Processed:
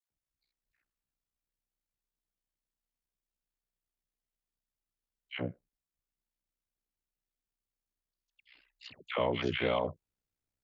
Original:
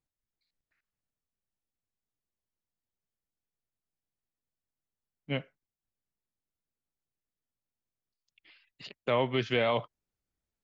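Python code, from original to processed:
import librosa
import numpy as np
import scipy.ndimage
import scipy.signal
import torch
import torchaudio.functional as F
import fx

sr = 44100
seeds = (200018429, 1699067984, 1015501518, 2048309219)

y = fx.dispersion(x, sr, late='lows', ms=110.0, hz=1000.0)
y = y * np.sin(2.0 * np.pi * 31.0 * np.arange(len(y)) / sr)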